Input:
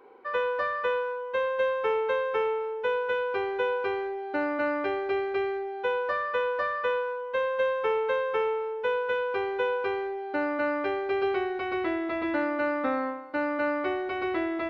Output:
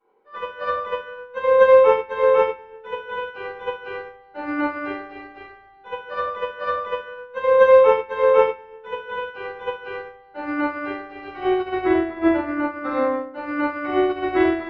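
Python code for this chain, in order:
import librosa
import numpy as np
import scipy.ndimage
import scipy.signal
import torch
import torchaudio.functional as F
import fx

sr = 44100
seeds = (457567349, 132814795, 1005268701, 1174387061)

y = fx.high_shelf(x, sr, hz=3000.0, db=-10.5, at=(11.8, 12.83))
y = y + 10.0 ** (-22.5 / 20.0) * np.pad(y, (int(214 * sr / 1000.0), 0))[:len(y)]
y = fx.room_shoebox(y, sr, seeds[0], volume_m3=420.0, walls='mixed', distance_m=7.4)
y = fx.upward_expand(y, sr, threshold_db=-22.0, expansion=2.5)
y = F.gain(torch.from_numpy(y), -2.0).numpy()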